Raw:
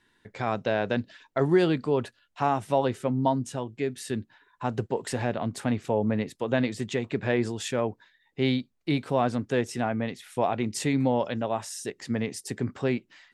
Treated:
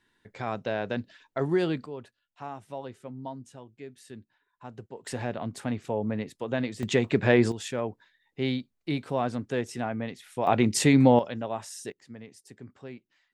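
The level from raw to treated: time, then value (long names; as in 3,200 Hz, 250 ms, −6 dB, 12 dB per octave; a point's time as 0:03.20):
−4 dB
from 0:01.86 −14 dB
from 0:05.06 −4 dB
from 0:06.83 +5 dB
from 0:07.52 −3.5 dB
from 0:10.47 +6 dB
from 0:11.19 −4 dB
from 0:11.92 −16 dB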